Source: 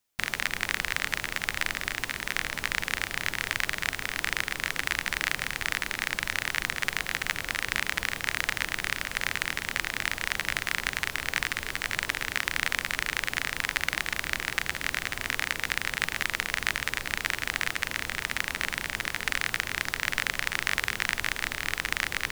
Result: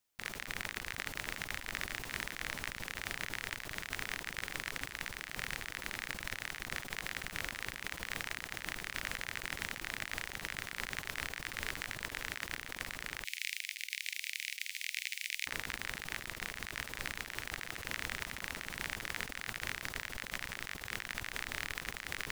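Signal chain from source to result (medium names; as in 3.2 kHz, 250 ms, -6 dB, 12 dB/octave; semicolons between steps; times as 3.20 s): 13.24–15.47 s: elliptic high-pass 2.2 kHz, stop band 60 dB; compressor with a negative ratio -35 dBFS, ratio -1; feedback echo behind a high-pass 629 ms, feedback 51%, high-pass 4.3 kHz, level -15 dB; trim -7 dB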